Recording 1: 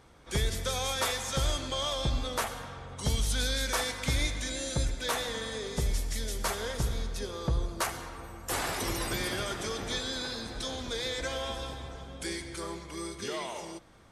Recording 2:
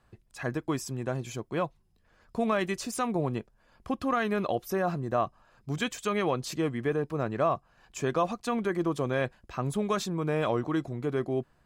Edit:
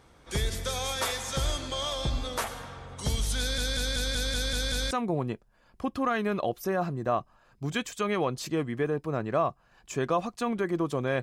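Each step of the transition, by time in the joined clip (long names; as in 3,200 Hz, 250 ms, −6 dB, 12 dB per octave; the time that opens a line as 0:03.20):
recording 1
0:03.39: stutter in place 0.19 s, 8 plays
0:04.91: continue with recording 2 from 0:02.97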